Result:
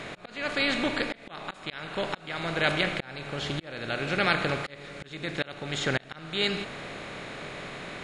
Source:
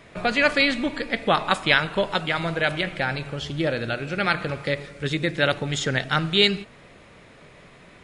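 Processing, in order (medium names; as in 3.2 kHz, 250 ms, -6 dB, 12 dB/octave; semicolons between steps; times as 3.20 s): spectral levelling over time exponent 0.6; slow attack 523 ms; trim -6 dB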